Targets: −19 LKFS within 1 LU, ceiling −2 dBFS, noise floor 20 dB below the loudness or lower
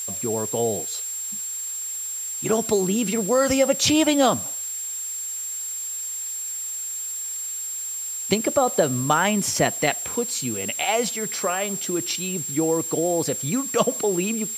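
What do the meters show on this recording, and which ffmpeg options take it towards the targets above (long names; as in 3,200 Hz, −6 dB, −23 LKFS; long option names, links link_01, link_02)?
interfering tone 7,500 Hz; level of the tone −28 dBFS; background noise floor −31 dBFS; target noise floor −43 dBFS; integrated loudness −23.0 LKFS; sample peak −4.0 dBFS; target loudness −19.0 LKFS
→ -af "bandreject=frequency=7500:width=30"
-af "afftdn=noise_reduction=12:noise_floor=-31"
-af "volume=4dB,alimiter=limit=-2dB:level=0:latency=1"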